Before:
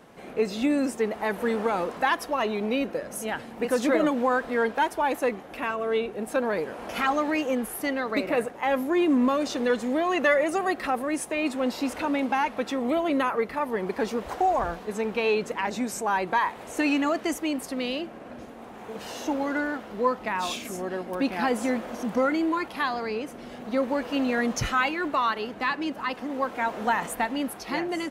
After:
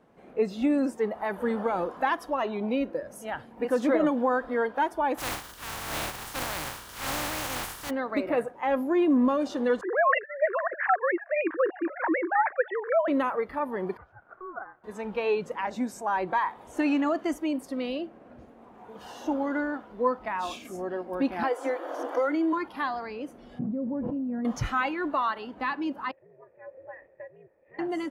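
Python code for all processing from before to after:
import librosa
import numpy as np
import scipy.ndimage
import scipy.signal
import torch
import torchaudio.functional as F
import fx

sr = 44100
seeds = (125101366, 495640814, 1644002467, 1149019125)

y = fx.spec_flatten(x, sr, power=0.16, at=(5.17, 7.89), fade=0.02)
y = fx.transient(y, sr, attack_db=-4, sustain_db=9, at=(5.17, 7.89), fade=0.02)
y = fx.chain(y, sr, fx.sine_speech(),
    fx.lowpass_res(hz=1700.0, q=7.1),
    fx.over_compress(threshold_db=-21.0, ratio=-0.5), at=(9.81, 13.08))
y = fx.chain(y, sr, fx.bandpass_q(hz=1100.0, q=5.3),
    fx.ring_mod(carrier_hz=370.0), at=(13.97, 14.84))
y = fx.chain(y, sr, fx.cheby1_highpass(hz=280.0, order=8),
    fx.band_squash(depth_pct=70), at=(21.43, 22.53))
y = fx.chain(y, sr, fx.bandpass_q(hz=150.0, q=1.3),
    fx.env_flatten(amount_pct=100), at=(23.59, 24.45))
y = fx.chain(y, sr, fx.ring_mod(carrier_hz=120.0),
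    fx.formant_cascade(vowel='e'), at=(26.11, 27.79))
y = fx.noise_reduce_blind(y, sr, reduce_db=8)
y = fx.high_shelf(y, sr, hz=2200.0, db=-11.5)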